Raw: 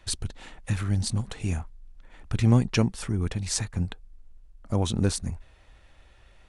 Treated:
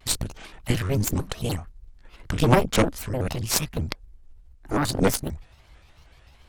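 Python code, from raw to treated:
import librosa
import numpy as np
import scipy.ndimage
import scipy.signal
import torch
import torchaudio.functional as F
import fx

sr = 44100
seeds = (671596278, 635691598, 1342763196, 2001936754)

y = fx.pitch_ramps(x, sr, semitones=6.5, every_ms=379)
y = fx.cheby_harmonics(y, sr, harmonics=(6,), levels_db=(-8,), full_scale_db=-6.5)
y = fx.vibrato_shape(y, sr, shape='square', rate_hz=6.7, depth_cents=250.0)
y = y * 10.0 ** (3.5 / 20.0)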